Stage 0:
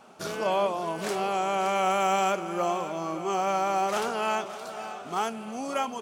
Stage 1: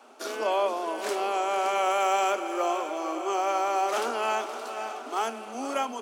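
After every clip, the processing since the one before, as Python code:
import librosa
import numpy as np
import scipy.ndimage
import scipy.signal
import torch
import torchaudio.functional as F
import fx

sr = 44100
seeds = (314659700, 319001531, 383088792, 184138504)

y = scipy.signal.sosfilt(scipy.signal.butter(16, 230.0, 'highpass', fs=sr, output='sos'), x)
y = fx.echo_feedback(y, sr, ms=470, feedback_pct=58, wet_db=-13)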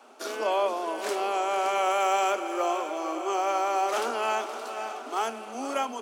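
y = scipy.signal.sosfilt(scipy.signal.butter(2, 160.0, 'highpass', fs=sr, output='sos'), x)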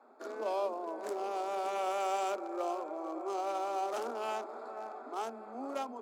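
y = fx.wiener(x, sr, points=15)
y = fx.dynamic_eq(y, sr, hz=1700.0, q=0.79, threshold_db=-40.0, ratio=4.0, max_db=-5)
y = F.gain(torch.from_numpy(y), -6.0).numpy()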